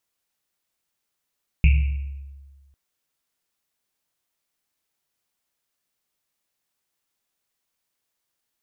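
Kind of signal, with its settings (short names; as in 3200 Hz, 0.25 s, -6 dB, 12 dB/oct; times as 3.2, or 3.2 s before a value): Risset drum, pitch 69 Hz, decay 1.52 s, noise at 2500 Hz, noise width 530 Hz, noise 10%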